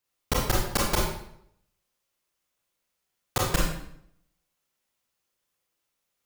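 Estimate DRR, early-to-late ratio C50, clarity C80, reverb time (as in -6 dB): -4.0 dB, 1.0 dB, 5.5 dB, 0.70 s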